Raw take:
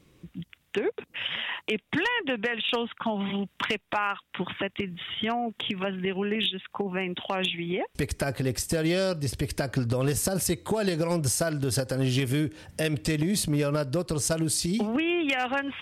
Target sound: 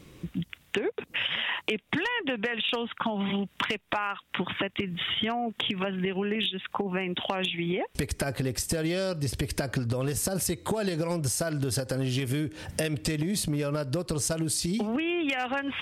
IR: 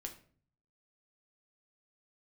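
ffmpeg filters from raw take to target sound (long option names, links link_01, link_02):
-af "acompressor=threshold=-35dB:ratio=6,volume=8.5dB"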